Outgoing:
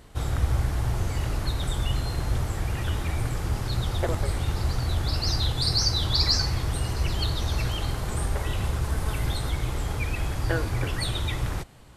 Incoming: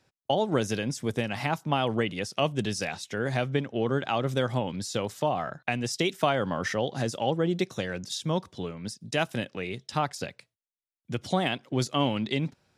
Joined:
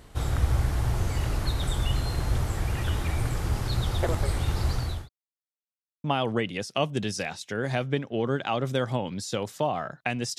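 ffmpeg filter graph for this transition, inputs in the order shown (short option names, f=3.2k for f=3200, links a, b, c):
-filter_complex "[0:a]apad=whole_dur=10.38,atrim=end=10.38,asplit=2[a][b];[a]atrim=end=5.09,asetpts=PTS-STARTPTS,afade=t=out:st=4.62:d=0.47:c=qsin[c];[b]atrim=start=5.09:end=6.04,asetpts=PTS-STARTPTS,volume=0[d];[1:a]atrim=start=1.66:end=6,asetpts=PTS-STARTPTS,afade=t=in:d=0.004:c=hsin[e];[c][d][e]concat=n=3:v=0:a=1"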